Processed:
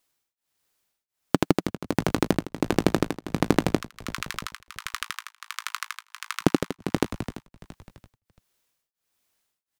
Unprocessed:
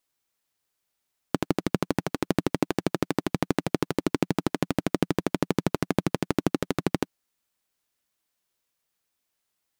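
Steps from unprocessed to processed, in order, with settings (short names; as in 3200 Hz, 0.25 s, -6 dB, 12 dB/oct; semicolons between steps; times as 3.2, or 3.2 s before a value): 3.79–6.41 steep high-pass 1100 Hz 72 dB/oct; frequency-shifting echo 0.338 s, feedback 42%, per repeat -70 Hz, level -11.5 dB; beating tremolo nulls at 1.4 Hz; gain +5.5 dB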